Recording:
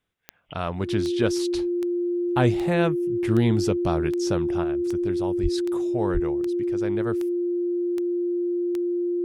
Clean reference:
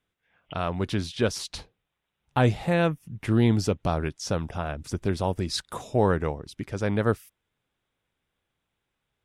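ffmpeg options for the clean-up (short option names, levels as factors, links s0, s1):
-filter_complex "[0:a]adeclick=t=4,bandreject=f=350:w=30,asplit=3[s0][s1][s2];[s0]afade=t=out:st=5.42:d=0.02[s3];[s1]highpass=f=140:w=0.5412,highpass=f=140:w=1.3066,afade=t=in:st=5.42:d=0.02,afade=t=out:st=5.54:d=0.02[s4];[s2]afade=t=in:st=5.54:d=0.02[s5];[s3][s4][s5]amix=inputs=3:normalize=0,asplit=3[s6][s7][s8];[s6]afade=t=out:st=6.13:d=0.02[s9];[s7]highpass=f=140:w=0.5412,highpass=f=140:w=1.3066,afade=t=in:st=6.13:d=0.02,afade=t=out:st=6.25:d=0.02[s10];[s8]afade=t=in:st=6.25:d=0.02[s11];[s9][s10][s11]amix=inputs=3:normalize=0,asetnsamples=n=441:p=0,asendcmd='4.64 volume volume 6dB',volume=1"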